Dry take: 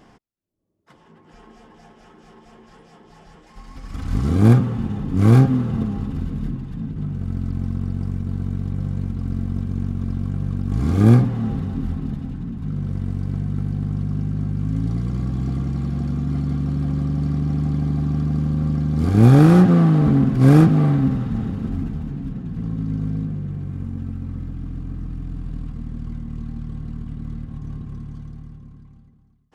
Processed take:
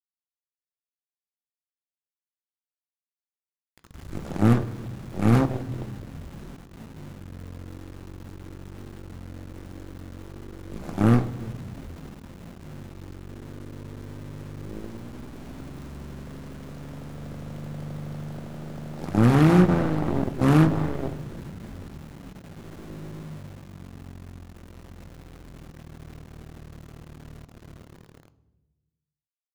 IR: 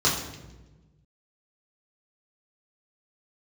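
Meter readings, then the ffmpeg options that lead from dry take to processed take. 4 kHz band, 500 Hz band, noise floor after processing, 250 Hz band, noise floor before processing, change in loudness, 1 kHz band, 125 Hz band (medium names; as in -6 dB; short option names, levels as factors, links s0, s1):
no reading, -3.5 dB, under -85 dBFS, -7.0 dB, -52 dBFS, -4.0 dB, -2.0 dB, -10.0 dB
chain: -filter_complex "[0:a]aeval=exprs='val(0)*gte(abs(val(0)),0.0422)':c=same,aeval=exprs='0.794*(cos(1*acos(clip(val(0)/0.794,-1,1)))-cos(1*PI/2))+0.0891*(cos(4*acos(clip(val(0)/0.794,-1,1)))-cos(4*PI/2))+0.1*(cos(6*acos(clip(val(0)/0.794,-1,1)))-cos(6*PI/2))+0.178*(cos(7*acos(clip(val(0)/0.794,-1,1)))-cos(7*PI/2))':c=same,asplit=2[s0][s1];[1:a]atrim=start_sample=2205[s2];[s1][s2]afir=irnorm=-1:irlink=0,volume=0.0447[s3];[s0][s3]amix=inputs=2:normalize=0,volume=0.422"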